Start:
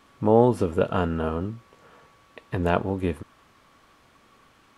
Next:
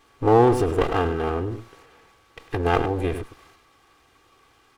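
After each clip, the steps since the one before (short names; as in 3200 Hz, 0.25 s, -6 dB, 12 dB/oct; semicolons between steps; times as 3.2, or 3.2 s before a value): minimum comb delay 2.5 ms; echo 0.103 s -15 dB; transient shaper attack +2 dB, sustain +7 dB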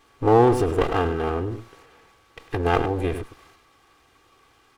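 nothing audible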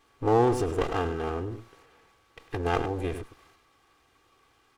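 dynamic EQ 6600 Hz, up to +6 dB, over -51 dBFS, Q 1.2; gain -6 dB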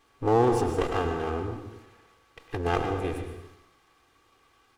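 plate-style reverb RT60 0.79 s, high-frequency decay 0.8×, pre-delay 0.105 s, DRR 6.5 dB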